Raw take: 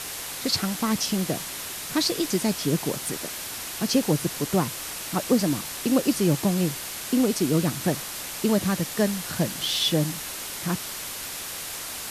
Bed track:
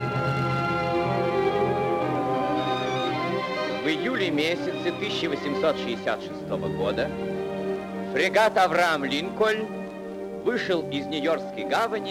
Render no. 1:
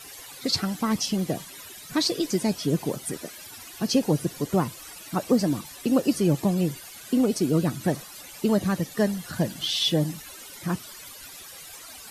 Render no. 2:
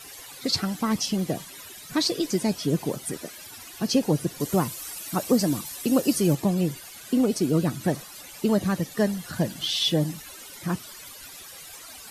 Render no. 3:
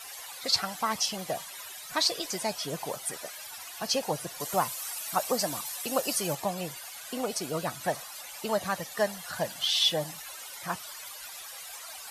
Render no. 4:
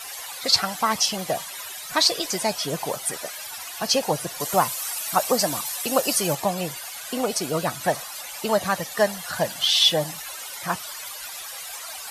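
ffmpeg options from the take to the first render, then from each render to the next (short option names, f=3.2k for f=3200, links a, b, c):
-af "afftdn=nr=15:nf=-35"
-filter_complex "[0:a]asettb=1/sr,asplit=3[a][b][c];[a]atrim=end=4.404[d];[b]atrim=start=4.4:end=6.35,asetpts=PTS-STARTPTS,afade=t=in:d=0.004:c=qsin,afade=t=out:st=1.946:d=0.004:c=qsin,highshelf=f=5.6k:g=9[e];[c]atrim=start=6.346[f];[d][e]acrossfade=d=0.004:c1=hsin:c2=qsin[g];[g][f]acrossfade=d=0.004:c1=qsin:c2=hsin"
-af "lowshelf=f=470:t=q:w=1.5:g=-13"
-af "volume=7dB"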